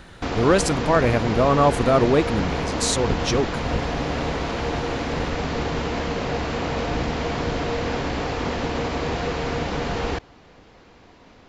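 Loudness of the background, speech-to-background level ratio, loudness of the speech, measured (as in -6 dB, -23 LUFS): -26.0 LUFS, 5.0 dB, -21.0 LUFS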